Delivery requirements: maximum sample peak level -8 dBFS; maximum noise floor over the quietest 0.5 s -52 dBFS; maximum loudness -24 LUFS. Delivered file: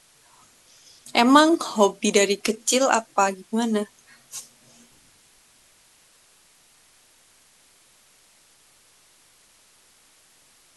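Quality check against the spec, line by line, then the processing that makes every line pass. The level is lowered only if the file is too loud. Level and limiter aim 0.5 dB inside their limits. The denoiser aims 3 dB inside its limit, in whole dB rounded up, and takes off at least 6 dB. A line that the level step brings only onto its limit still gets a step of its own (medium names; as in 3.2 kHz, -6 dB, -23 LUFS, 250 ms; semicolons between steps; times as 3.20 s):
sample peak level -2.0 dBFS: fail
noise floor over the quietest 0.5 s -58 dBFS: pass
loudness -20.5 LUFS: fail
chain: trim -4 dB; peak limiter -8.5 dBFS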